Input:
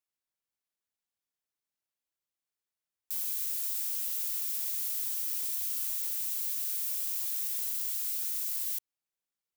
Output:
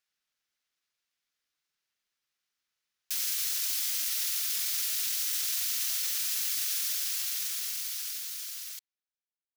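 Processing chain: fade out at the end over 2.81 s; harmony voices -7 st -1 dB; high-order bell 2.8 kHz +8.5 dB 2.6 oct; trim -1 dB

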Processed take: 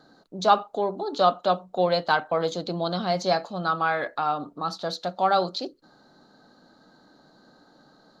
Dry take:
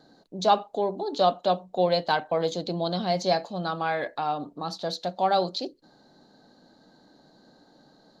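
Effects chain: peaking EQ 1.3 kHz +10 dB 0.48 oct

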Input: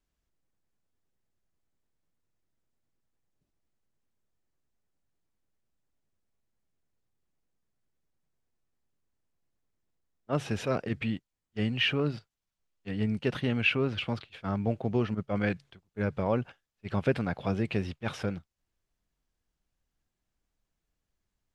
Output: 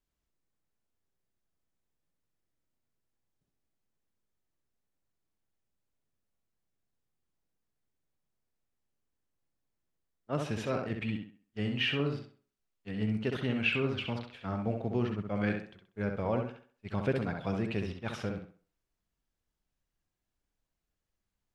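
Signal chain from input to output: tape echo 66 ms, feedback 36%, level -3.5 dB, low-pass 3.8 kHz; trim -4 dB

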